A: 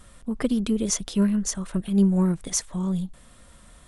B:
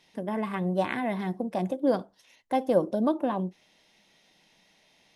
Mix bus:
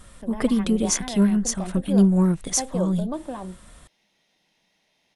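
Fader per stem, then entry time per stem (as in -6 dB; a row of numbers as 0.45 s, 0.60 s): +2.5 dB, -5.5 dB; 0.00 s, 0.05 s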